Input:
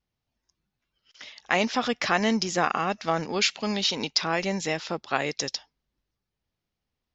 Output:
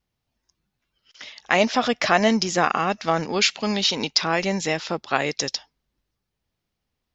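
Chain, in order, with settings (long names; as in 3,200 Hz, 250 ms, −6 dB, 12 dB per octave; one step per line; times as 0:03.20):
0:01.58–0:02.28: parametric band 640 Hz +8 dB 0.25 octaves
level +4 dB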